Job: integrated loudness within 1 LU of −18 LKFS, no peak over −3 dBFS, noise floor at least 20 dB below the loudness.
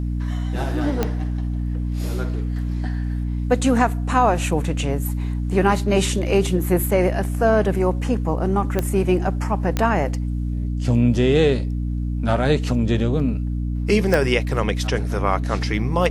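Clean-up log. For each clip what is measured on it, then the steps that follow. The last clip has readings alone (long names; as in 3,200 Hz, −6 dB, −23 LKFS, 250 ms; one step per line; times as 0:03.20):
number of clicks 4; mains hum 60 Hz; hum harmonics up to 300 Hz; level of the hum −21 dBFS; integrated loudness −21.5 LKFS; sample peak −2.5 dBFS; target loudness −18.0 LKFS
→ click removal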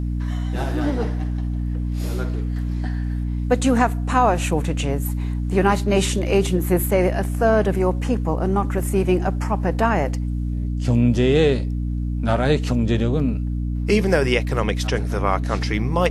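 number of clicks 0; mains hum 60 Hz; hum harmonics up to 300 Hz; level of the hum −21 dBFS
→ mains-hum notches 60/120/180/240/300 Hz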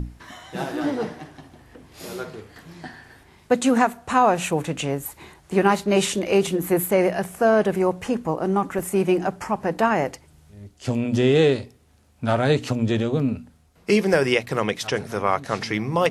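mains hum none found; integrated loudness −22.0 LKFS; sample peak −3.5 dBFS; target loudness −18.0 LKFS
→ level +4 dB
brickwall limiter −3 dBFS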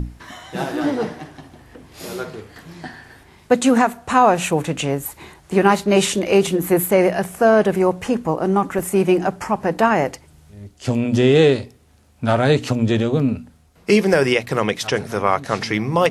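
integrated loudness −18.5 LKFS; sample peak −3.0 dBFS; background noise floor −51 dBFS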